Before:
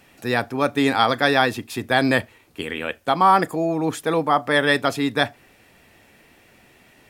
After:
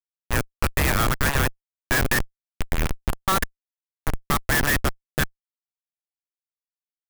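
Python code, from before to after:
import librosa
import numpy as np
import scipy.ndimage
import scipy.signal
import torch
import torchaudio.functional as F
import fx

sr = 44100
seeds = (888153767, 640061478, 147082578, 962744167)

y = scipy.signal.sosfilt(scipy.signal.butter(4, 1200.0, 'highpass', fs=sr, output='sos'), x)
y = fx.peak_eq(y, sr, hz=2000.0, db=10.5, octaves=1.6)
y = fx.over_compress(y, sr, threshold_db=-25.0, ratio=-1.0, at=(2.78, 3.27), fade=0.02)
y = fx.rotary(y, sr, hz=0.85)
y = fx.schmitt(y, sr, flips_db=-17.0)
y = fx.clock_jitter(y, sr, seeds[0], jitter_ms=0.042)
y = y * 10.0 ** (3.0 / 20.0)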